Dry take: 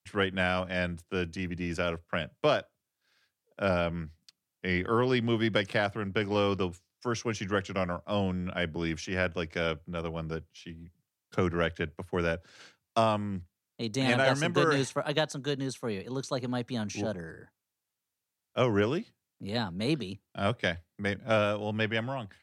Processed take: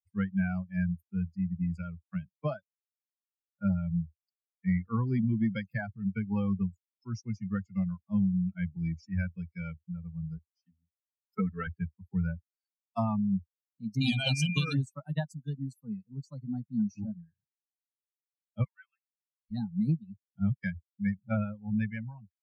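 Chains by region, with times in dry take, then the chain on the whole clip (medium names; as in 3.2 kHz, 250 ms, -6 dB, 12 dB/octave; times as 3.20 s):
10.37–11.67 s: peaking EQ 180 Hz -7 dB 0.92 oct + comb 4.5 ms, depth 77%
14.00–14.72 s: high-pass 61 Hz + resonant high shelf 2.5 kHz +7.5 dB, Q 3 + whistle 2.4 kHz -26 dBFS
18.64–19.51 s: high-pass 1.4 kHz 24 dB/octave + tilt EQ -4 dB/octave + comb 6.7 ms, depth 80%
whole clip: expander on every frequency bin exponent 3; resonant low shelf 280 Hz +12 dB, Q 3; compression 10:1, threshold -24 dBFS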